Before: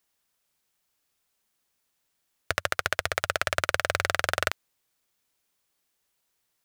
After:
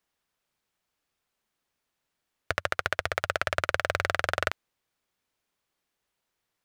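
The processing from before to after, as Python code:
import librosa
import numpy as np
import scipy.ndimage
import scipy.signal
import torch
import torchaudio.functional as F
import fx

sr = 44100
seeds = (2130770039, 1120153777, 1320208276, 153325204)

y = fx.high_shelf(x, sr, hz=4900.0, db=-11.0)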